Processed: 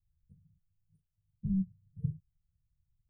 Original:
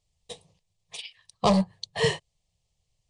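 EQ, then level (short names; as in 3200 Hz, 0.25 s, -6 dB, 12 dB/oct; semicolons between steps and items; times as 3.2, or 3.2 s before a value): inverse Chebyshev band-stop 720–7300 Hz, stop band 70 dB; bell 430 Hz -5.5 dB 2.1 oct; 0.0 dB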